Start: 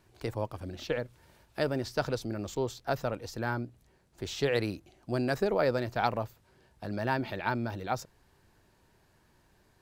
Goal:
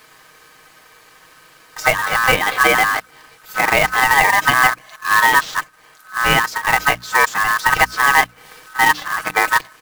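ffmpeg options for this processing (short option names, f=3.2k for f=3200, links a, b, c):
-filter_complex "[0:a]areverse,highpass=110,aecho=1:1:6.5:0.51,acrossover=split=2100[a][b];[a]aeval=exprs='val(0)*sin(2*PI*1400*n/s)':c=same[c];[b]acompressor=threshold=-52dB:ratio=6[d];[c][d]amix=inputs=2:normalize=0,bandreject=f=60:t=h:w=6,bandreject=f=120:t=h:w=6,bandreject=f=180:t=h:w=6,bandreject=f=240:t=h:w=6,bandreject=f=300:t=h:w=6,acrusher=bits=2:mode=log:mix=0:aa=0.000001,alimiter=level_in=22dB:limit=-1dB:release=50:level=0:latency=1,volume=-1dB"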